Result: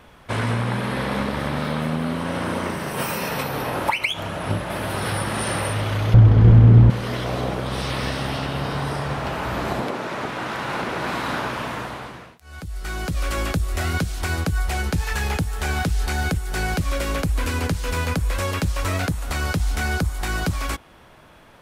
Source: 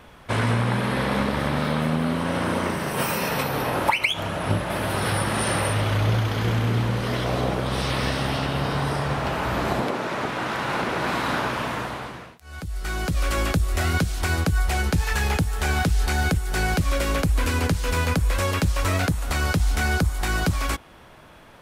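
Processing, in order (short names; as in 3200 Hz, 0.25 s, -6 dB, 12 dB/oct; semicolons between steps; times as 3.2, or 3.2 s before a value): 6.14–6.9 tilt -4.5 dB/oct; gain -1 dB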